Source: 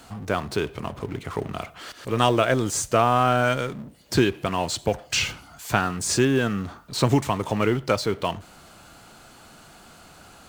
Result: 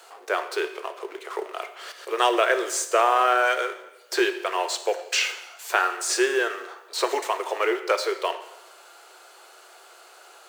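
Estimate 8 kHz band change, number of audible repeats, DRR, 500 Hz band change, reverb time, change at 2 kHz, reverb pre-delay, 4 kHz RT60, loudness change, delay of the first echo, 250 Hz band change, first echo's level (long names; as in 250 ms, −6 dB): −0.5 dB, no echo audible, 8.5 dB, 0.0 dB, 1.0 s, +3.0 dB, 5 ms, 0.90 s, −0.5 dB, no echo audible, −9.0 dB, no echo audible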